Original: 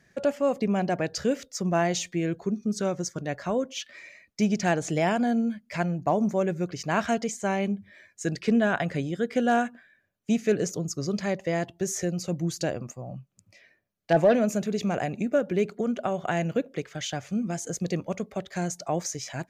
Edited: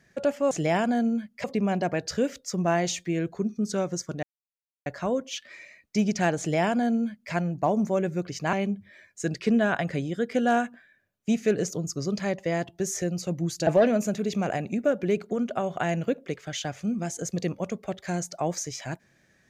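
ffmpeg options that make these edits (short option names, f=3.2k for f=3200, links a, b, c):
-filter_complex "[0:a]asplit=6[a][b][c][d][e][f];[a]atrim=end=0.512[g];[b]atrim=start=4.828:end=5.762[h];[c]atrim=start=0.508:end=3.3,asetpts=PTS-STARTPTS,afade=t=out:st=2.788:d=0.004:c=hsin,apad=pad_dur=0.63[i];[d]atrim=start=3.3:end=6.972,asetpts=PTS-STARTPTS,afade=t=in:d=0.004:c=hsin[j];[e]atrim=start=7.538:end=12.682[k];[f]atrim=start=14.148[l];[g][h]acrossfade=d=0.004:c1=hsin:c2=hsin[m];[i][j]concat=n=2:v=0:a=1[n];[m][n]acrossfade=d=0.004:c1=hsin:c2=hsin[o];[o][k]acrossfade=d=0.004:c1=hsin:c2=hsin[p];[p][l]acrossfade=d=0.004:c1=hsin:c2=hsin"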